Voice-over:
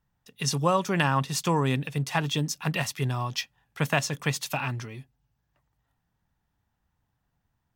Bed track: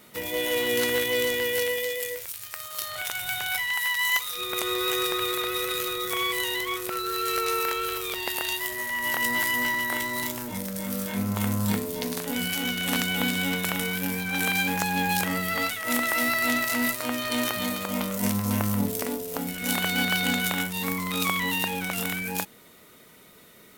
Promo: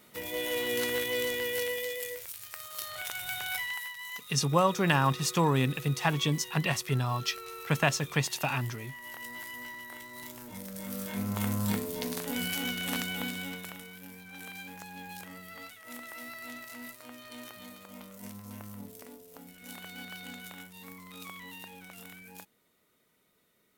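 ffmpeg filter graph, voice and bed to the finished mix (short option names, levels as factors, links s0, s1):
-filter_complex "[0:a]adelay=3900,volume=0.891[s0];[1:a]volume=2.11,afade=t=out:st=3.62:d=0.31:silence=0.281838,afade=t=in:st=10.09:d=1.34:silence=0.237137,afade=t=out:st=12.57:d=1.28:silence=0.188365[s1];[s0][s1]amix=inputs=2:normalize=0"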